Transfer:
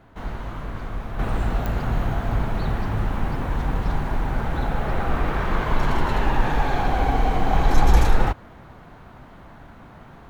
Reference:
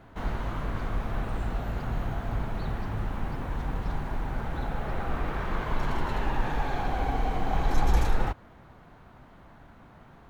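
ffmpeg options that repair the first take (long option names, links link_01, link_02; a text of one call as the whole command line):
ffmpeg -i in.wav -af "adeclick=threshold=4,asetnsamples=nb_out_samples=441:pad=0,asendcmd='1.19 volume volume -7.5dB',volume=0dB" out.wav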